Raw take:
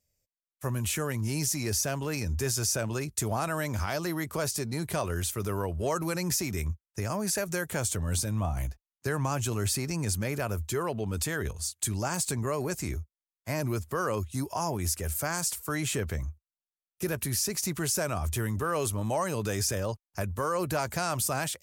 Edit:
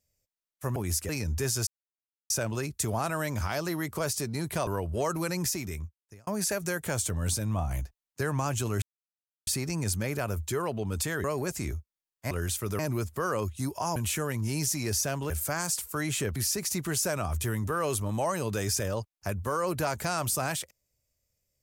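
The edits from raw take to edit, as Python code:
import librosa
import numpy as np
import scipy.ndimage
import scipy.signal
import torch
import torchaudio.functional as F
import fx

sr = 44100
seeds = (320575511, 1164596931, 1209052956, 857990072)

y = fx.edit(x, sr, fx.swap(start_s=0.76, length_s=1.34, other_s=14.71, other_length_s=0.33),
    fx.insert_silence(at_s=2.68, length_s=0.63),
    fx.move(start_s=5.05, length_s=0.48, to_s=13.54),
    fx.fade_out_span(start_s=6.22, length_s=0.91),
    fx.insert_silence(at_s=9.68, length_s=0.65),
    fx.cut(start_s=11.45, length_s=1.02),
    fx.cut(start_s=16.1, length_s=1.18), tone=tone)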